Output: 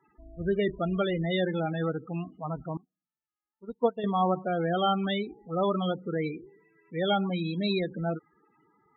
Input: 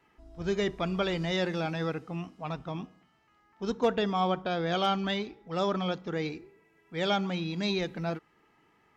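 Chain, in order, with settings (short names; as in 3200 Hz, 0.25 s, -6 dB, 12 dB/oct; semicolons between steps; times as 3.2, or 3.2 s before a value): loudest bins only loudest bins 16; 2.77–4.04 upward expander 2.5:1, over -44 dBFS; gain +2.5 dB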